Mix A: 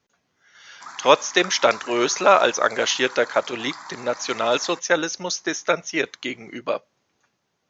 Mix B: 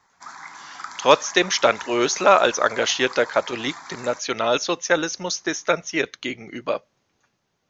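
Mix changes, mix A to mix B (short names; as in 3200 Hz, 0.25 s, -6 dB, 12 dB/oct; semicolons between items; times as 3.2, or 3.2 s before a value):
background: entry -0.60 s; master: add low shelf 82 Hz +10 dB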